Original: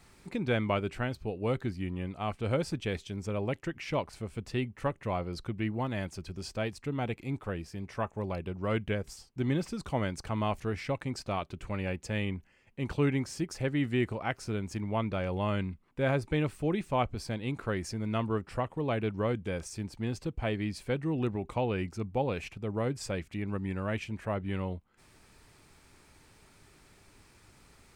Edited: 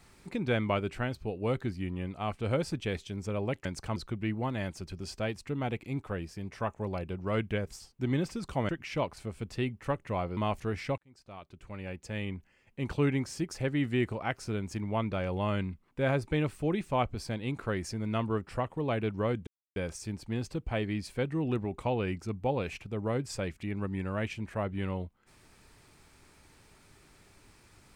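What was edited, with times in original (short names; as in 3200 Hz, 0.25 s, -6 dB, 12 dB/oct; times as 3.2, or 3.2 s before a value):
3.65–5.33 swap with 10.06–10.37
10.98–12.8 fade in
19.47 insert silence 0.29 s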